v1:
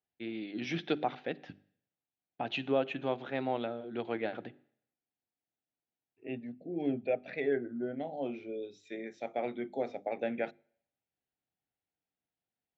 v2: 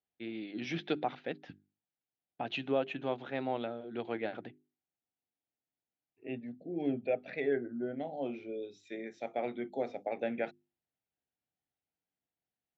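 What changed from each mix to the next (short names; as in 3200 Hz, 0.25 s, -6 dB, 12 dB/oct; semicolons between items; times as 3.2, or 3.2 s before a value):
reverb: off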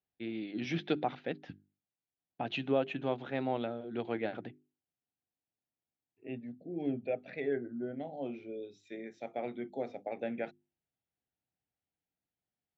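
second voice -3.5 dB; master: add low shelf 220 Hz +6 dB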